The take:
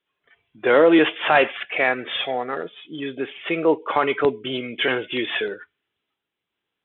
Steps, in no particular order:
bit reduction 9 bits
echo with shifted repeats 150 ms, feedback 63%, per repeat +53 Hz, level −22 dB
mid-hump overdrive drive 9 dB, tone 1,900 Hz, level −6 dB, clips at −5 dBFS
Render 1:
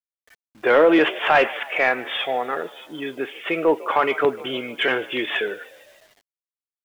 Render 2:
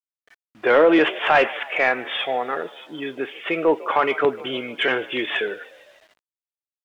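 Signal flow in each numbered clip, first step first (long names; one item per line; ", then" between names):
echo with shifted repeats, then mid-hump overdrive, then bit reduction
echo with shifted repeats, then bit reduction, then mid-hump overdrive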